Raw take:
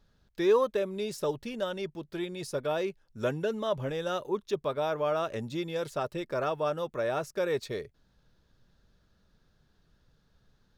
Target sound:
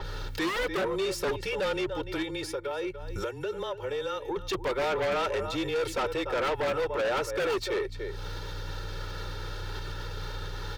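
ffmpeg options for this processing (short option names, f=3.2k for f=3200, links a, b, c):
-filter_complex "[0:a]acompressor=mode=upward:threshold=-36dB:ratio=2.5,highpass=f=610:p=1,aeval=exprs='val(0)+0.00158*(sin(2*PI*60*n/s)+sin(2*PI*2*60*n/s)/2+sin(2*PI*3*60*n/s)/3+sin(2*PI*4*60*n/s)/4+sin(2*PI*5*60*n/s)/5)':c=same,asettb=1/sr,asplit=3[a][b][c];[a]atrim=end=2.224[d];[b]atrim=start=2.22:end=4.36,asetpts=PTS-STARTPTS,afade=t=in:d=0.004:c=qsin,afade=t=out:st=2.136:d=0.004:c=qsin,acompressor=threshold=-44dB:ratio=10[e];[c]atrim=start=4.356[f];[d][e]acrossfade=d=0.004:c1=hsin:c2=qsin[g];[g][f]acrossfade=d=0.004:c1=qsin:c2=hsin,asplit=2[h][i];[i]adelay=291.5,volume=-16dB,highshelf=f=4k:g=-6.56[j];[h][j]amix=inputs=2:normalize=0,afreqshift=-26,aecho=1:1:2.2:0.97,aeval=exprs='0.0841*(cos(1*acos(clip(val(0)/0.0841,-1,1)))-cos(1*PI/2))+0.015*(cos(5*acos(clip(val(0)/0.0841,-1,1)))-cos(5*PI/2))':c=same,aeval=exprs='0.0891*sin(PI/2*1.78*val(0)/0.0891)':c=same,alimiter=level_in=4.5dB:limit=-24dB:level=0:latency=1:release=244,volume=-4.5dB,adynamicequalizer=threshold=0.00178:dfrequency=4600:dqfactor=0.7:tfrequency=4600:tqfactor=0.7:attack=5:release=100:ratio=0.375:range=3.5:mode=cutabove:tftype=highshelf,volume=3dB"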